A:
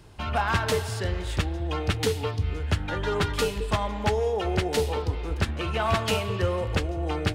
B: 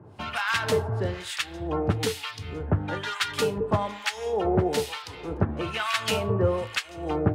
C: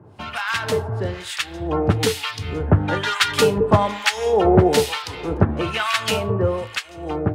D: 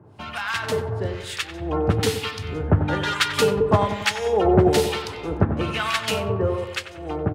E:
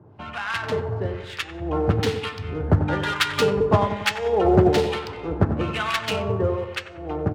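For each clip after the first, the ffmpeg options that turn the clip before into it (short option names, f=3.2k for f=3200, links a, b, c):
-filter_complex "[0:a]highpass=f=97:w=0.5412,highpass=f=97:w=1.3066,acrossover=split=1200[a][b];[a]aeval=exprs='val(0)*(1-1/2+1/2*cos(2*PI*1.1*n/s))':c=same[c];[b]aeval=exprs='val(0)*(1-1/2-1/2*cos(2*PI*1.1*n/s))':c=same[d];[c][d]amix=inputs=2:normalize=0,volume=5.5dB"
-af "dynaudnorm=f=210:g=17:m=9dB,volume=2dB"
-filter_complex "[0:a]asplit=2[a][b];[b]adelay=93,lowpass=f=1.8k:p=1,volume=-8.5dB,asplit=2[c][d];[d]adelay=93,lowpass=f=1.8k:p=1,volume=0.55,asplit=2[e][f];[f]adelay=93,lowpass=f=1.8k:p=1,volume=0.55,asplit=2[g][h];[h]adelay=93,lowpass=f=1.8k:p=1,volume=0.55,asplit=2[i][j];[j]adelay=93,lowpass=f=1.8k:p=1,volume=0.55,asplit=2[k][l];[l]adelay=93,lowpass=f=1.8k:p=1,volume=0.55,asplit=2[m][n];[n]adelay=93,lowpass=f=1.8k:p=1,volume=0.55[o];[a][c][e][g][i][k][m][o]amix=inputs=8:normalize=0,volume=-3dB"
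-af "acrusher=bits=8:mode=log:mix=0:aa=0.000001,adynamicsmooth=sensitivity=2:basefreq=2.4k,bandreject=f=218.1:t=h:w=4,bandreject=f=436.2:t=h:w=4,bandreject=f=654.3:t=h:w=4,bandreject=f=872.4:t=h:w=4,bandreject=f=1.0905k:t=h:w=4,bandreject=f=1.3086k:t=h:w=4,bandreject=f=1.5267k:t=h:w=4,bandreject=f=1.7448k:t=h:w=4,bandreject=f=1.9629k:t=h:w=4,bandreject=f=2.181k:t=h:w=4,bandreject=f=2.3991k:t=h:w=4,bandreject=f=2.6172k:t=h:w=4,bandreject=f=2.8353k:t=h:w=4,bandreject=f=3.0534k:t=h:w=4,bandreject=f=3.2715k:t=h:w=4,bandreject=f=3.4896k:t=h:w=4,bandreject=f=3.7077k:t=h:w=4,bandreject=f=3.9258k:t=h:w=4,bandreject=f=4.1439k:t=h:w=4,bandreject=f=4.362k:t=h:w=4,bandreject=f=4.5801k:t=h:w=4,bandreject=f=4.7982k:t=h:w=4,bandreject=f=5.0163k:t=h:w=4,bandreject=f=5.2344k:t=h:w=4,bandreject=f=5.4525k:t=h:w=4,bandreject=f=5.6706k:t=h:w=4,bandreject=f=5.8887k:t=h:w=4,bandreject=f=6.1068k:t=h:w=4,bandreject=f=6.3249k:t=h:w=4,bandreject=f=6.543k:t=h:w=4,bandreject=f=6.7611k:t=h:w=4,bandreject=f=6.9792k:t=h:w=4,bandreject=f=7.1973k:t=h:w=4,bandreject=f=7.4154k:t=h:w=4,bandreject=f=7.6335k:t=h:w=4,bandreject=f=7.8516k:t=h:w=4,bandreject=f=8.0697k:t=h:w=4,bandreject=f=8.2878k:t=h:w=4,bandreject=f=8.5059k:t=h:w=4,bandreject=f=8.724k:t=h:w=4"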